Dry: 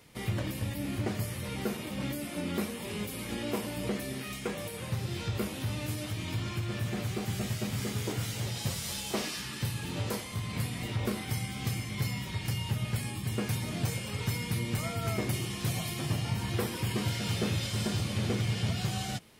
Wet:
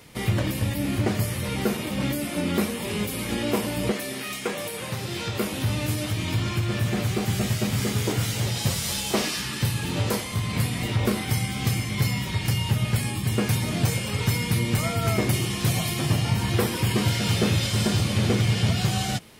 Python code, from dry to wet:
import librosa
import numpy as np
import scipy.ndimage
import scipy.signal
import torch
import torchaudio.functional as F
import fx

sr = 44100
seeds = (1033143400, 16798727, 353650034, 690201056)

y = fx.highpass(x, sr, hz=fx.line((3.91, 450.0), (5.51, 210.0)), slope=6, at=(3.91, 5.51), fade=0.02)
y = F.gain(torch.from_numpy(y), 8.5).numpy()